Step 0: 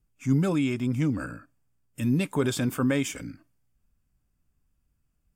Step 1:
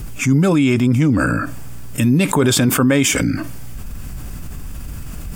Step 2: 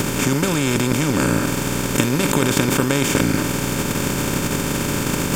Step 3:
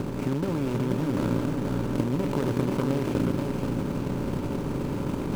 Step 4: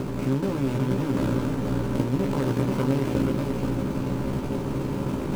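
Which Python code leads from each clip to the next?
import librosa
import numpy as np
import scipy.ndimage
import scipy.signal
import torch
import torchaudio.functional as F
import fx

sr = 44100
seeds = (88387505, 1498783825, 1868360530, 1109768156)

y1 = fx.env_flatten(x, sr, amount_pct=70)
y1 = y1 * 10.0 ** (7.5 / 20.0)
y2 = fx.bin_compress(y1, sr, power=0.2)
y2 = fx.transient(y2, sr, attack_db=7, sustain_db=-5)
y2 = y2 * 10.0 ** (-11.0 / 20.0)
y3 = scipy.ndimage.median_filter(y2, 25, mode='constant')
y3 = y3 + 10.0 ** (-4.5 / 20.0) * np.pad(y3, (int(482 * sr / 1000.0), 0))[:len(y3)]
y3 = y3 * 10.0 ** (-7.5 / 20.0)
y4 = fx.doubler(y3, sr, ms=15.0, db=-3.5)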